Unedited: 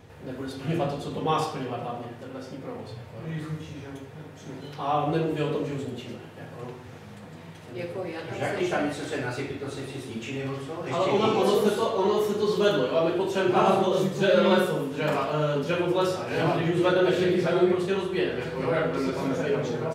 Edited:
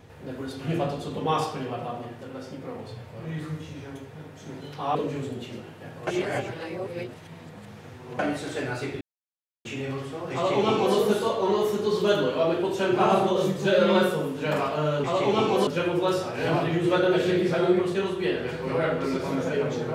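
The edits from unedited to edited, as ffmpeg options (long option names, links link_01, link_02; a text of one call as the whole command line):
ffmpeg -i in.wav -filter_complex "[0:a]asplit=8[link_01][link_02][link_03][link_04][link_05][link_06][link_07][link_08];[link_01]atrim=end=4.952[link_09];[link_02]atrim=start=5.508:end=6.632[link_10];[link_03]atrim=start=6.628:end=8.752,asetpts=PTS-STARTPTS,areverse[link_11];[link_04]atrim=start=8.748:end=9.57,asetpts=PTS-STARTPTS,afade=type=out:start_time=0.818:duration=0.004:curve=hsin[link_12];[link_05]atrim=start=9.57:end=10.21,asetpts=PTS-STARTPTS,volume=0[link_13];[link_06]atrim=start=10.21:end=15.602,asetpts=PTS-STARTPTS,afade=type=in:duration=0.004:curve=hsin[link_14];[link_07]atrim=start=10.898:end=11.532[link_15];[link_08]atrim=start=15.598[link_16];[link_09][link_10]acrossfade=duration=0.004:curve1=hsin:curve2=hsin[link_17];[link_17][link_11]acrossfade=duration=0.004:curve1=hsin:curve2=hsin[link_18];[link_12][link_13][link_14]concat=n=3:v=0:a=1[link_19];[link_18][link_19]acrossfade=duration=0.004:curve1=hsin:curve2=hsin[link_20];[link_20][link_15]acrossfade=duration=0.004:curve1=hsin:curve2=hsin[link_21];[link_21][link_16]acrossfade=duration=0.004:curve1=hsin:curve2=hsin" out.wav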